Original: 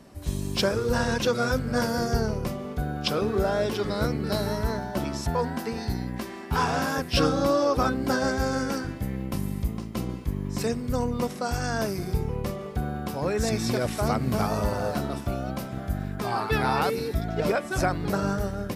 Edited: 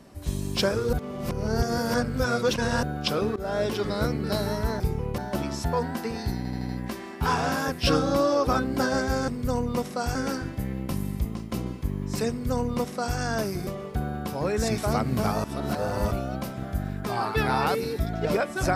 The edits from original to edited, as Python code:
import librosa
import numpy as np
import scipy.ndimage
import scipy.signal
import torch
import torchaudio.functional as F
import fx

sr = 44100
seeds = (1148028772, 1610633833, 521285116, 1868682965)

y = fx.edit(x, sr, fx.reverse_span(start_s=0.93, length_s=1.9),
    fx.fade_in_from(start_s=3.36, length_s=0.32, curve='qsin', floor_db=-22.0),
    fx.stutter(start_s=5.99, slice_s=0.08, count=5),
    fx.duplicate(start_s=10.73, length_s=0.87, to_s=8.58),
    fx.move(start_s=12.1, length_s=0.38, to_s=4.8),
    fx.cut(start_s=13.59, length_s=0.34),
    fx.reverse_span(start_s=14.59, length_s=0.67), tone=tone)